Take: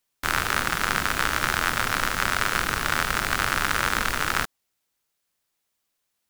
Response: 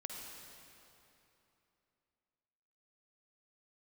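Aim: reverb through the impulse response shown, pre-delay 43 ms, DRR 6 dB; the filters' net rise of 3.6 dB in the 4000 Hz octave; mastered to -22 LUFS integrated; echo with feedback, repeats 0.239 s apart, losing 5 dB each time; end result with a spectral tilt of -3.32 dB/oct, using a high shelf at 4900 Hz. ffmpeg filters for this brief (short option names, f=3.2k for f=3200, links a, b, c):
-filter_complex "[0:a]equalizer=f=4k:t=o:g=8,highshelf=f=4.9k:g=-7.5,aecho=1:1:239|478|717|956|1195|1434|1673:0.562|0.315|0.176|0.0988|0.0553|0.031|0.0173,asplit=2[a][b];[1:a]atrim=start_sample=2205,adelay=43[c];[b][c]afir=irnorm=-1:irlink=0,volume=-4.5dB[d];[a][d]amix=inputs=2:normalize=0,volume=-1dB"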